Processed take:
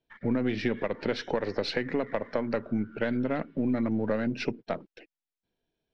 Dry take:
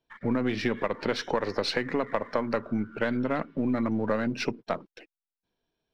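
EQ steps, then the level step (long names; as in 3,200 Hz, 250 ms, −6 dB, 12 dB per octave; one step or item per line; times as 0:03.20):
high-frequency loss of the air 110 metres
parametric band 1,100 Hz −7.5 dB 0.67 octaves
0.0 dB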